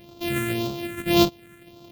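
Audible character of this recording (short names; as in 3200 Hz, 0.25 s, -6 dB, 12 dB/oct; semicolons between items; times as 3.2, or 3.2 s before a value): a buzz of ramps at a fixed pitch in blocks of 128 samples; phasing stages 4, 1.8 Hz, lowest notch 800–1800 Hz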